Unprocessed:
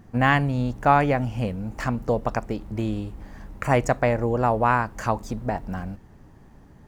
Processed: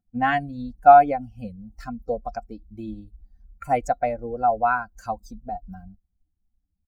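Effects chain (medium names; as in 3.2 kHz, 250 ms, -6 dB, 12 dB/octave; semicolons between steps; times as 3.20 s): expander on every frequency bin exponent 2; comb 3.9 ms, depth 55%; small resonant body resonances 710/1400 Hz, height 18 dB, ringing for 50 ms; trim -5 dB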